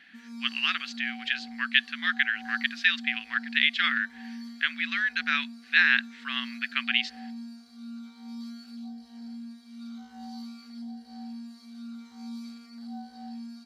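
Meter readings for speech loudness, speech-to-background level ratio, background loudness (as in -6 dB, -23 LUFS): -26.5 LUFS, 16.0 dB, -42.5 LUFS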